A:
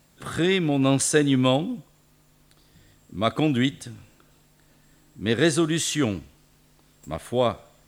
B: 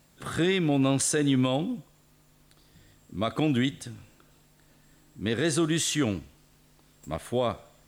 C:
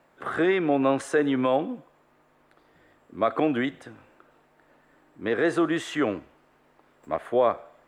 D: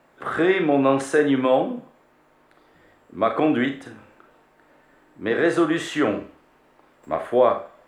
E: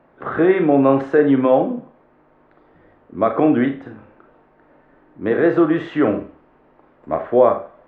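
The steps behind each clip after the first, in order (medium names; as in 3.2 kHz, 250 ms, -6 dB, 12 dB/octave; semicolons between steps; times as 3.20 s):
peak limiter -14 dBFS, peak gain reduction 7.5 dB; trim -1.5 dB
three-band isolator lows -19 dB, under 330 Hz, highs -23 dB, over 2.1 kHz; trim +7.5 dB
Schroeder reverb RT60 0.31 s, combs from 29 ms, DRR 5.5 dB; trim +3 dB
tape spacing loss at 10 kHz 43 dB; trim +6.5 dB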